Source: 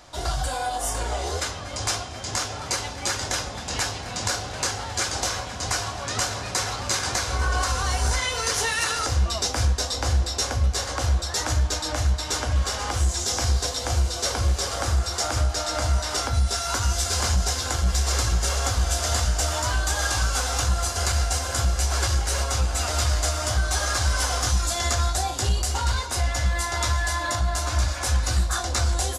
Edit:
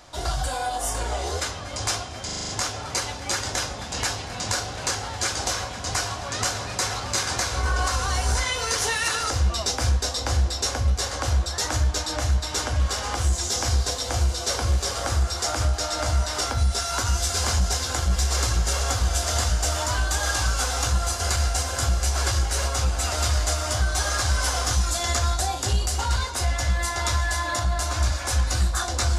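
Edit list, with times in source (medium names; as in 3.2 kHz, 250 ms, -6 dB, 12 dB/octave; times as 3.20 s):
2.25 s: stutter 0.04 s, 7 plays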